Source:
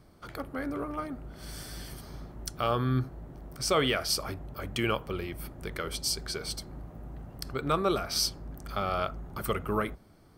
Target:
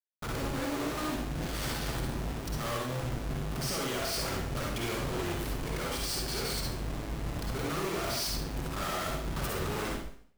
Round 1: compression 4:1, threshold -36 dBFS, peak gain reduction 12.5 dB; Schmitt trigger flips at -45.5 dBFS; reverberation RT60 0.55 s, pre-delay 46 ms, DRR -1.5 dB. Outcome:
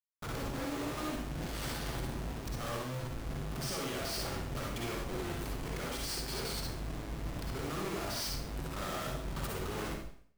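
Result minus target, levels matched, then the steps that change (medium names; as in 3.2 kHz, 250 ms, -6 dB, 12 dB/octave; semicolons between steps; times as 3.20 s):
compression: peak gain reduction +5 dB
change: compression 4:1, threshold -29 dBFS, peak gain reduction 7.5 dB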